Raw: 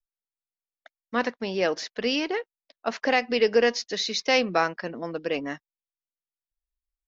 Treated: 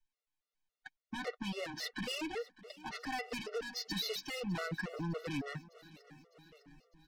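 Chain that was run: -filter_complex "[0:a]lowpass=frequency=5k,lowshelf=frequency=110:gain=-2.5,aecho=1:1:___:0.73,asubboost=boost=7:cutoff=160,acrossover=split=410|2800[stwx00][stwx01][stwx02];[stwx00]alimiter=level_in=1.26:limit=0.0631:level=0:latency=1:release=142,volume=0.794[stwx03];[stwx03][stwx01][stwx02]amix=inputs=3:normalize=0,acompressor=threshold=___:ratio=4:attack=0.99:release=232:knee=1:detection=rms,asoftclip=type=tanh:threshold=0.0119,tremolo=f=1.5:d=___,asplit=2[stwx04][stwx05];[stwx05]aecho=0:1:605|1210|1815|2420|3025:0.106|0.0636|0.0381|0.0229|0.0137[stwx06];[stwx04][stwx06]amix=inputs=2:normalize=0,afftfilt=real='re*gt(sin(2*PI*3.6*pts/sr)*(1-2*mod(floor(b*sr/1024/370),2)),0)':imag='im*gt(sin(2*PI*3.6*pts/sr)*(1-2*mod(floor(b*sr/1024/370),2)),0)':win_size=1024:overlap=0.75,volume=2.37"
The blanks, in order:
6.6, 0.0316, 0.32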